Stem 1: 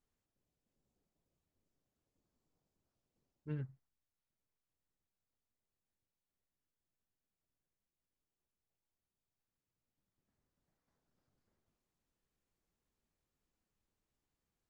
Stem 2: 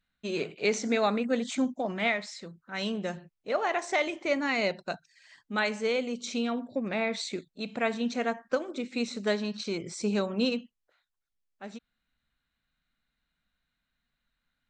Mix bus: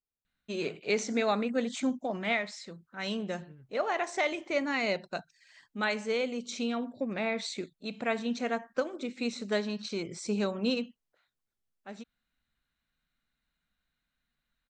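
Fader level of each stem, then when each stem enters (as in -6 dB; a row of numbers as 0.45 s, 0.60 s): -13.5 dB, -2.0 dB; 0.00 s, 0.25 s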